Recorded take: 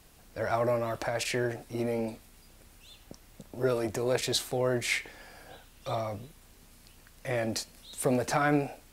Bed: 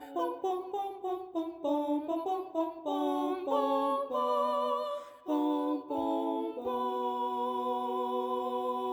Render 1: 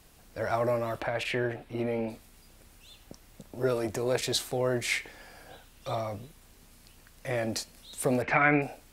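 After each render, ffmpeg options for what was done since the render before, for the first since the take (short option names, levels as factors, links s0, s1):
-filter_complex "[0:a]asettb=1/sr,asplit=3[s0][s1][s2];[s0]atrim=end=1.004[s3];[s1]atrim=start=1:end=2.1,asetpts=PTS-STARTPTS,afade=t=in:d=0.004:c=qsin,afade=t=out:st=1.096:d=0.004:c=qsin,highshelf=f=4200:t=q:w=1.5:g=-9.5[s4];[s2]atrim=start=2.096[s5];[s3][s4]acrossfade=d=0.004:c1=hsin:c2=qsin[s6];[s6][s5]acrossfade=d=0.004:c1=qsin:c2=hsin,asettb=1/sr,asplit=3[s7][s8][s9];[s7]atrim=end=8.224[s10];[s8]atrim=start=8.22:end=8.62,asetpts=PTS-STARTPTS,afade=t=in:d=0.004:c=qsin,afade=t=out:st=0.396:d=0.004:c=qsin,lowpass=f=2200:t=q:w=5[s11];[s9]atrim=start=8.616[s12];[s10][s11]acrossfade=d=0.004:c1=hsin:c2=qsin[s13];[s13][s12]acrossfade=d=0.004:c1=qsin:c2=hsin"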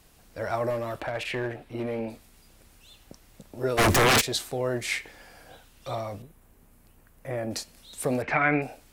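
-filter_complex "[0:a]asettb=1/sr,asplit=3[s0][s1][s2];[s0]atrim=end=0.704[s3];[s1]atrim=start=0.7:end=1.99,asetpts=PTS-STARTPTS,afade=t=in:d=0.004:c=qsin,afade=t=out:st=1.286:d=0.004:c=qsin,aeval=exprs='clip(val(0),-1,0.0596)':c=same[s4];[s2]atrim=start=1.986[s5];[s3][s4]acrossfade=d=0.004:c1=hsin:c2=qsin[s6];[s6][s5]acrossfade=d=0.004:c1=qsin:c2=hsin,asplit=3[s7][s8][s9];[s7]afade=t=out:st=3.77:d=0.02[s10];[s8]aeval=exprs='0.158*sin(PI/2*7.94*val(0)/0.158)':c=same,afade=t=in:st=3.77:d=0.02,afade=t=out:st=4.2:d=0.02[s11];[s9]afade=t=in:st=4.2:d=0.02[s12];[s10][s11][s12]amix=inputs=3:normalize=0,asettb=1/sr,asplit=3[s13][s14][s15];[s13]atrim=end=6.224[s16];[s14]atrim=start=6.22:end=7.51,asetpts=PTS-STARTPTS,afade=t=in:d=0.004:c=qsin,afade=t=out:st=1.286:d=0.004:c=qsin,equalizer=f=4600:w=0.6:g=-13.5[s17];[s15]atrim=start=7.506[s18];[s16][s17]acrossfade=d=0.004:c1=hsin:c2=qsin[s19];[s19][s18]acrossfade=d=0.004:c1=qsin:c2=hsin"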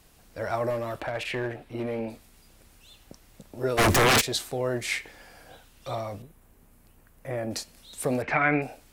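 -af anull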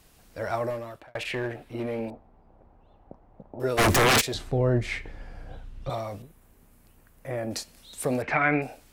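-filter_complex "[0:a]asettb=1/sr,asplit=3[s0][s1][s2];[s0]atrim=end=2.104[s3];[s1]atrim=start=2.1:end=3.6,asetpts=PTS-STARTPTS,afade=t=in:d=0.004:c=qsin,afade=t=out:st=1.496:d=0.004:c=qsin,lowpass=f=810:t=q:w=2.3[s4];[s2]atrim=start=3.596[s5];[s3][s4]acrossfade=d=0.004:c1=hsin:c2=qsin[s6];[s6][s5]acrossfade=d=0.004:c1=qsin:c2=hsin,asettb=1/sr,asplit=3[s7][s8][s9];[s7]atrim=end=4.344[s10];[s8]atrim=start=4.34:end=5.9,asetpts=PTS-STARTPTS,afade=t=in:d=0.004:c=qsin,afade=t=out:st=1.556:d=0.004:c=qsin,aemphasis=mode=reproduction:type=riaa[s11];[s9]atrim=start=5.896[s12];[s10][s11]acrossfade=d=0.004:c1=hsin:c2=qsin[s13];[s13][s12]acrossfade=d=0.004:c1=qsin:c2=hsin,asplit=2[s14][s15];[s14]atrim=end=1.15,asetpts=PTS-STARTPTS,afade=t=out:st=0.56:d=0.59[s16];[s15]atrim=start=1.15,asetpts=PTS-STARTPTS,afade=t=in:d=0.004:c=hsin[s17];[s16][s17]concat=n=2:v=0:a=1"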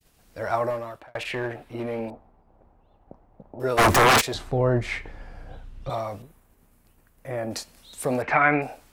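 -af "agate=range=0.0224:threshold=0.00224:ratio=3:detection=peak,adynamicequalizer=threshold=0.0141:dfrequency=1000:dqfactor=0.9:tfrequency=1000:tqfactor=0.9:attack=5:release=100:ratio=0.375:range=3.5:mode=boostabove:tftype=bell"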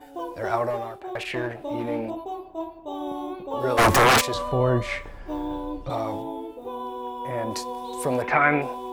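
-filter_complex "[1:a]volume=0.944[s0];[0:a][s0]amix=inputs=2:normalize=0"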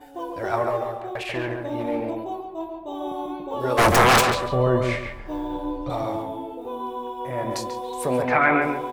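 -filter_complex "[0:a]asplit=2[s0][s1];[s1]adelay=24,volume=0.2[s2];[s0][s2]amix=inputs=2:normalize=0,asplit=2[s3][s4];[s4]adelay=140,lowpass=f=2300:p=1,volume=0.631,asplit=2[s5][s6];[s6]adelay=140,lowpass=f=2300:p=1,volume=0.28,asplit=2[s7][s8];[s8]adelay=140,lowpass=f=2300:p=1,volume=0.28,asplit=2[s9][s10];[s10]adelay=140,lowpass=f=2300:p=1,volume=0.28[s11];[s3][s5][s7][s9][s11]amix=inputs=5:normalize=0"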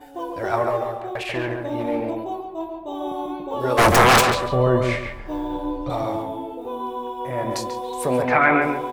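-af "volume=1.26"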